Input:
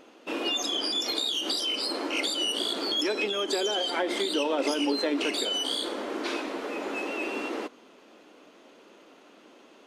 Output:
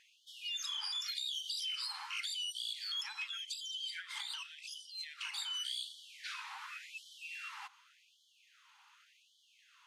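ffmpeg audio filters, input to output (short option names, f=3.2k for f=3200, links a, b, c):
-af "acompressor=threshold=-31dB:ratio=4,afftfilt=real='re*gte(b*sr/1024,760*pow(3000/760,0.5+0.5*sin(2*PI*0.88*pts/sr)))':imag='im*gte(b*sr/1024,760*pow(3000/760,0.5+0.5*sin(2*PI*0.88*pts/sr)))':win_size=1024:overlap=0.75,volume=-5dB"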